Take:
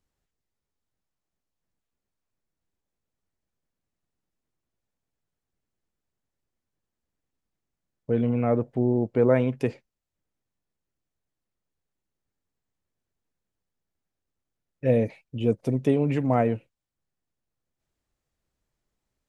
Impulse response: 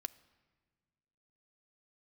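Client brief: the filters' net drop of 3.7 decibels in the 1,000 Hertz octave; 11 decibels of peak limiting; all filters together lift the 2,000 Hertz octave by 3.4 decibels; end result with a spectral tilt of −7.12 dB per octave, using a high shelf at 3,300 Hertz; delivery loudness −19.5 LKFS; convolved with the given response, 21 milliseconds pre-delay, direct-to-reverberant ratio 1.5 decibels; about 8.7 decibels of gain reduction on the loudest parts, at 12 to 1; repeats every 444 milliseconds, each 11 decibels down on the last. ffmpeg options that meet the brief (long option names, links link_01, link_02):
-filter_complex "[0:a]equalizer=frequency=1000:width_type=o:gain=-7.5,equalizer=frequency=2000:width_type=o:gain=8.5,highshelf=frequency=3300:gain=-7,acompressor=threshold=-25dB:ratio=12,alimiter=level_in=1.5dB:limit=-24dB:level=0:latency=1,volume=-1.5dB,aecho=1:1:444|888|1332:0.282|0.0789|0.0221,asplit=2[link_01][link_02];[1:a]atrim=start_sample=2205,adelay=21[link_03];[link_02][link_03]afir=irnorm=-1:irlink=0,volume=1dB[link_04];[link_01][link_04]amix=inputs=2:normalize=0,volume=14.5dB"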